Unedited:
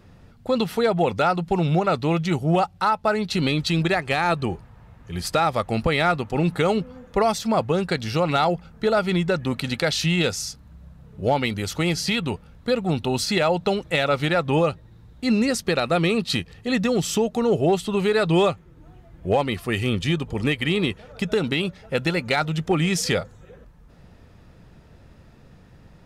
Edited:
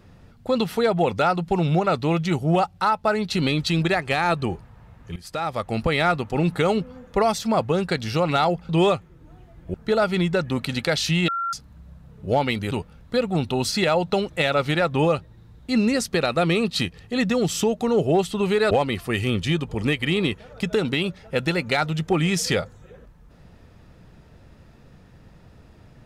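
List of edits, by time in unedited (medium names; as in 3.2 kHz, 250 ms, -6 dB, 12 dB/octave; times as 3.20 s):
5.16–6.15 s: fade in equal-power, from -18.5 dB
10.23–10.48 s: bleep 1.37 kHz -23 dBFS
11.66–12.25 s: delete
18.25–19.30 s: move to 8.69 s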